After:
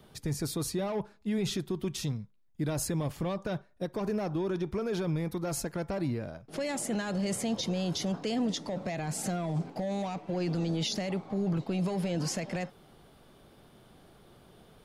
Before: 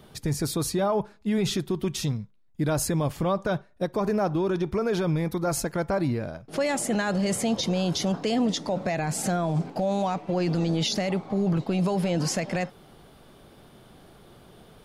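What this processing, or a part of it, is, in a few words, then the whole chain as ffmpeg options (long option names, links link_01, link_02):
one-band saturation: -filter_complex "[0:a]acrossover=split=480|2200[link_01][link_02][link_03];[link_02]asoftclip=type=tanh:threshold=-30.5dB[link_04];[link_01][link_04][link_03]amix=inputs=3:normalize=0,volume=-5.5dB"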